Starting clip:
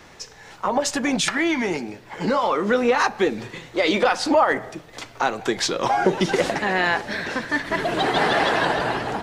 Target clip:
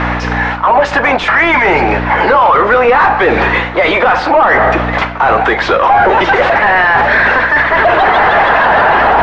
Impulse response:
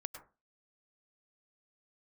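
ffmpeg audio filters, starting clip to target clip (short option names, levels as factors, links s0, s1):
-filter_complex "[0:a]highpass=680,aeval=exprs='val(0)+0.00891*(sin(2*PI*60*n/s)+sin(2*PI*2*60*n/s)/2+sin(2*PI*3*60*n/s)/3+sin(2*PI*4*60*n/s)/4+sin(2*PI*5*60*n/s)/5)':c=same,areverse,acompressor=threshold=0.0224:ratio=6,areverse,asplit=2[s0][s1];[s1]highpass=f=720:p=1,volume=7.94,asoftclip=type=tanh:threshold=0.0668[s2];[s0][s2]amix=inputs=2:normalize=0,lowpass=f=1300:p=1,volume=0.501,lowpass=2300,alimiter=level_in=26.6:limit=0.891:release=50:level=0:latency=1,volume=0.891"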